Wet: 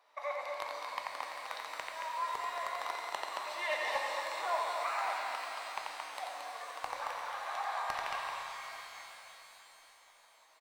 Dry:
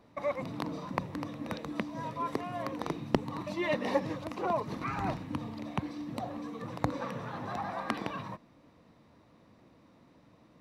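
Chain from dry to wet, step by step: HPF 710 Hz 24 dB/oct; loudspeakers at several distances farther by 30 m -6 dB, 77 m -6 dB; hard clip -24.5 dBFS, distortion -16 dB; shimmer reverb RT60 3.8 s, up +12 st, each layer -8 dB, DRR 2 dB; gain -1.5 dB

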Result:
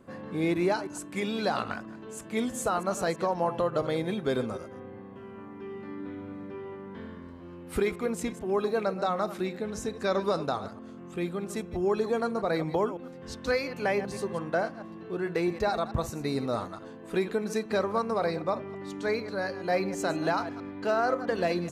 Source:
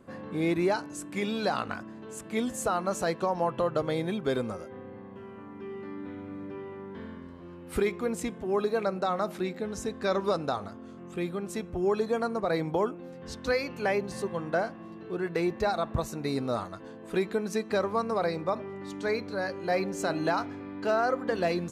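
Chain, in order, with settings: reverse delay 0.109 s, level -12.5 dB

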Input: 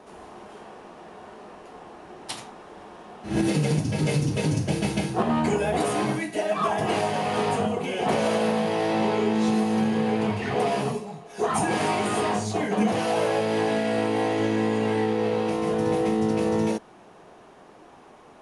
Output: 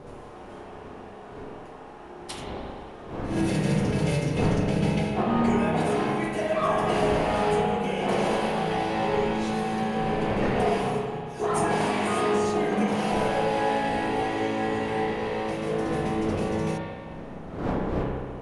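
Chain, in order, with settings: wind noise 470 Hz -35 dBFS; 4.37–6.24 high shelf 8100 Hz -9 dB; spring tank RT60 1.9 s, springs 31/43 ms, chirp 55 ms, DRR -1.5 dB; gain -4 dB

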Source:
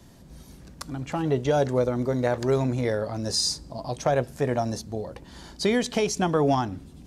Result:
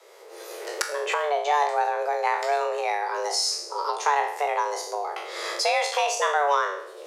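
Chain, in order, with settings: spectral trails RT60 0.54 s; recorder AGC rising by 22 dB/s; HPF 110 Hz 12 dB/oct; frequency shift +290 Hz; bell 2000 Hz +7 dB 2 oct; gain -4 dB

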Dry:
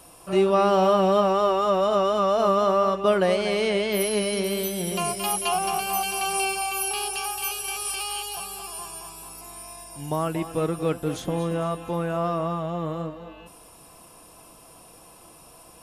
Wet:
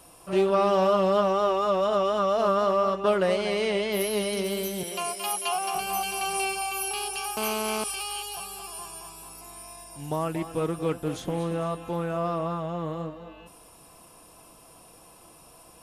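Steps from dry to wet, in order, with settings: 4.83–5.75 Bessel high-pass 460 Hz, order 2; 7.37–7.84 GSM buzz -27 dBFS; Doppler distortion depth 0.15 ms; gain -2.5 dB

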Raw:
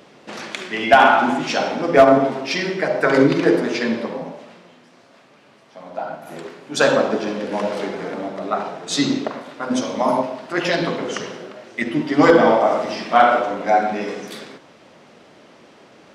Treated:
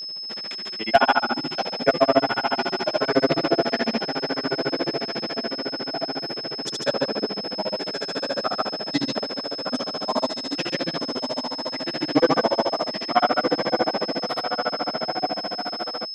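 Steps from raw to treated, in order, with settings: diffused feedback echo 1.39 s, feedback 51%, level -4 dB; grains 61 ms, grains 14/s, pitch spread up and down by 0 st; whine 5200 Hz -28 dBFS; gain -2.5 dB

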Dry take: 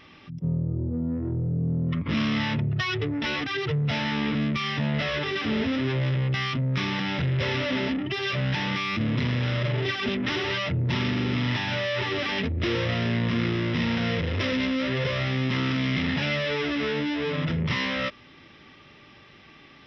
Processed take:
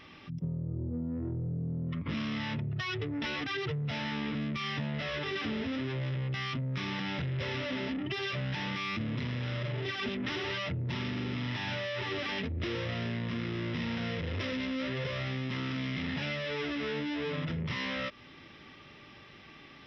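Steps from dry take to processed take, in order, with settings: compressor, threshold -30 dBFS, peak gain reduction 9 dB; gain -1.5 dB

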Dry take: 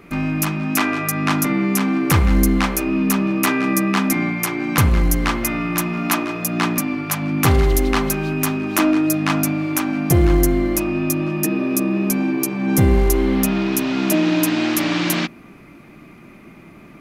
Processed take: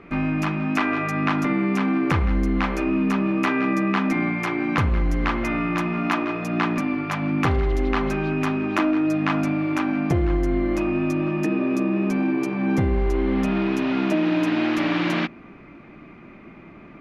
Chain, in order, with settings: LPF 2700 Hz 12 dB/oct; bell 140 Hz -3 dB 1.3 oct; compressor, threshold -17 dBFS, peak gain reduction 6.5 dB

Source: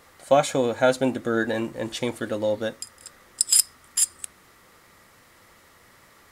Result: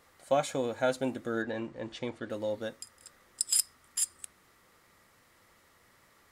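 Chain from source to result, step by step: 1.42–2.3 air absorption 110 m; 2.95–3.57 crackle 81/s -54 dBFS; gain -9 dB

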